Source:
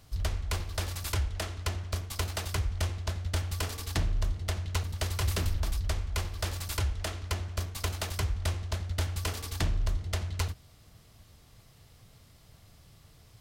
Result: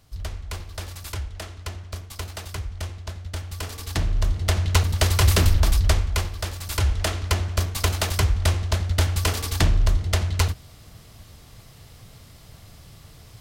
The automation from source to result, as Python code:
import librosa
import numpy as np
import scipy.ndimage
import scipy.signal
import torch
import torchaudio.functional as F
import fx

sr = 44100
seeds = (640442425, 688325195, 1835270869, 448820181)

y = fx.gain(x, sr, db=fx.line((3.46, -1.0), (4.64, 12.0), (5.92, 12.0), (6.57, 1.5), (6.9, 10.0)))